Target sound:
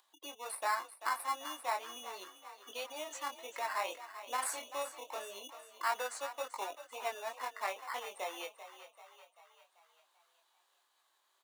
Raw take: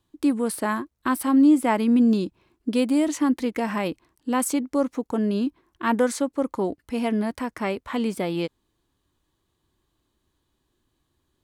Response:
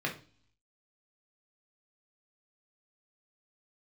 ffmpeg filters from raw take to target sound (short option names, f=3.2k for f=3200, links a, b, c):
-filter_complex "[0:a]asplit=3[a][b][c];[a]afade=t=out:st=3.86:d=0.02[d];[b]asplit=2[e][f];[f]adelay=32,volume=-2.5dB[g];[e][g]amix=inputs=2:normalize=0,afade=t=in:st=3.86:d=0.02,afade=t=out:st=5.12:d=0.02[h];[c]afade=t=in:st=5.12:d=0.02[i];[d][h][i]amix=inputs=3:normalize=0,flanger=delay=19.5:depth=2:speed=2,afftdn=nr=36:nf=-40,asplit=2[j][k];[k]acrusher=samples=14:mix=1:aa=0.000001,volume=-5dB[l];[j][l]amix=inputs=2:normalize=0,acompressor=mode=upward:threshold=-28dB:ratio=2.5,alimiter=limit=-14.5dB:level=0:latency=1:release=396,highpass=f=710:w=0.5412,highpass=f=710:w=1.3066,asplit=7[m][n][o][p][q][r][s];[n]adelay=389,afreqshift=33,volume=-12.5dB[t];[o]adelay=778,afreqshift=66,volume=-17.9dB[u];[p]adelay=1167,afreqshift=99,volume=-23.2dB[v];[q]adelay=1556,afreqshift=132,volume=-28.6dB[w];[r]adelay=1945,afreqshift=165,volume=-33.9dB[x];[s]adelay=2334,afreqshift=198,volume=-39.3dB[y];[m][t][u][v][w][x][y]amix=inputs=7:normalize=0,volume=-4.5dB"